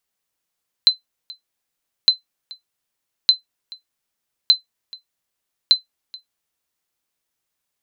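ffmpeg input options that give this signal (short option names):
-f lavfi -i "aevalsrc='0.708*(sin(2*PI*4060*mod(t,1.21))*exp(-6.91*mod(t,1.21)/0.13)+0.0668*sin(2*PI*4060*max(mod(t,1.21)-0.43,0))*exp(-6.91*max(mod(t,1.21)-0.43,0)/0.13))':d=6.05:s=44100"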